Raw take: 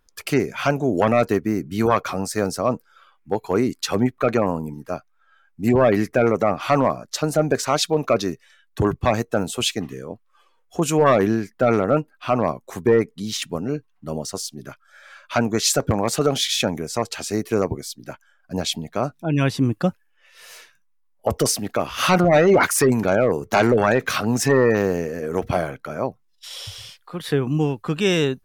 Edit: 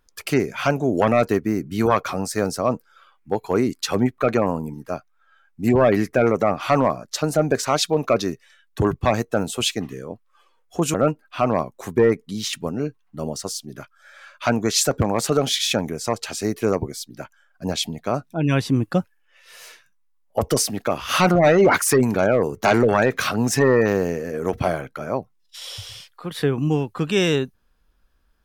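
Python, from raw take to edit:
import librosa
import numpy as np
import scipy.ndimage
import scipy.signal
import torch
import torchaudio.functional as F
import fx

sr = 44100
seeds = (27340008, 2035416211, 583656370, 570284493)

y = fx.edit(x, sr, fx.cut(start_s=10.94, length_s=0.89), tone=tone)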